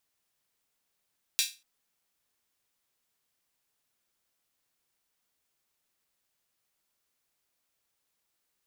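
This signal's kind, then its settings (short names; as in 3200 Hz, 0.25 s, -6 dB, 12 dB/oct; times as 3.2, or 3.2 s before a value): open hi-hat length 0.24 s, high-pass 3200 Hz, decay 0.28 s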